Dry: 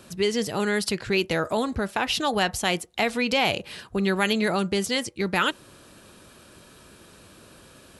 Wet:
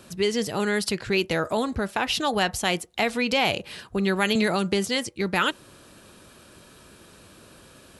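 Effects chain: 4.35–4.87 s: three bands compressed up and down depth 100%

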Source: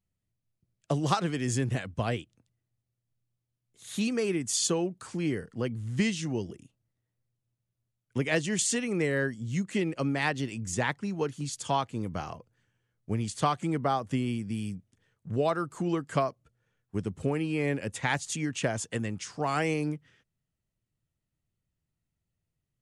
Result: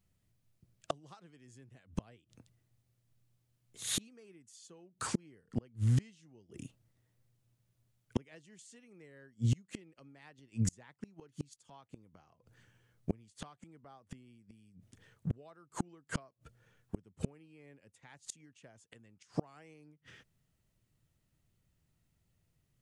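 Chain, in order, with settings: inverted gate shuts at -27 dBFS, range -36 dB; trim +7.5 dB

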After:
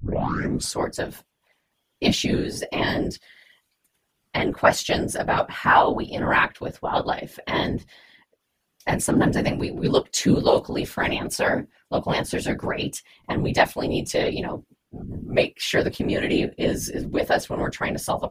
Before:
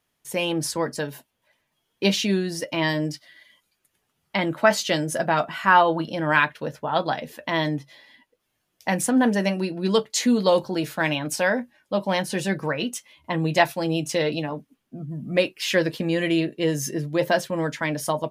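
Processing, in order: tape start-up on the opening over 0.76 s; whisper effect

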